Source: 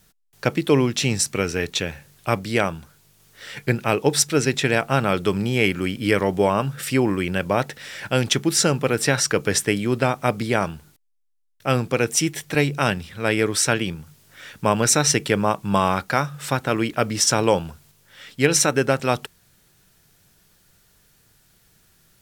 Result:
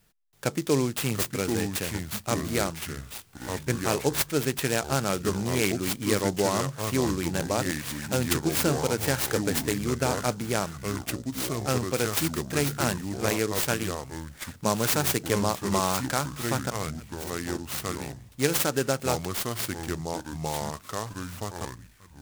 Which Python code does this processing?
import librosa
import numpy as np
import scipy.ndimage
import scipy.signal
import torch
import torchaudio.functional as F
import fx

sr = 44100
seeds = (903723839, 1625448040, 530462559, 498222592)

y = fx.tone_stack(x, sr, knobs='6-0-2', at=(16.7, 18.32))
y = fx.echo_pitch(y, sr, ms=608, semitones=-4, count=2, db_per_echo=-6.0)
y = fx.noise_mod_delay(y, sr, seeds[0], noise_hz=5700.0, depth_ms=0.067)
y = F.gain(torch.from_numpy(y), -6.5).numpy()